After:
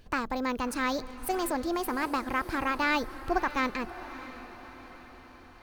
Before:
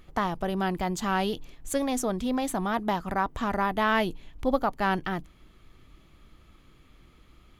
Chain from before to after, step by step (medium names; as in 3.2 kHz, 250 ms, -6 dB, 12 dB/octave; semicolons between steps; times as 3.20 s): speed mistake 33 rpm record played at 45 rpm; echo that smears into a reverb 623 ms, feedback 54%, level -14 dB; trim -2.5 dB